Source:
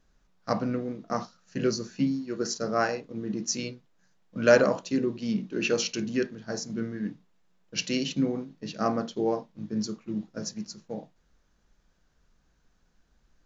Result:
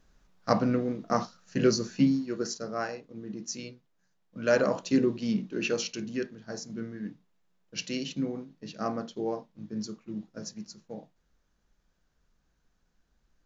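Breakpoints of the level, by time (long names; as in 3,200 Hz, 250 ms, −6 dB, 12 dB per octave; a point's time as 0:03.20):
0:02.16 +3 dB
0:02.69 −7 dB
0:04.45 −7 dB
0:04.95 +3 dB
0:05.94 −5 dB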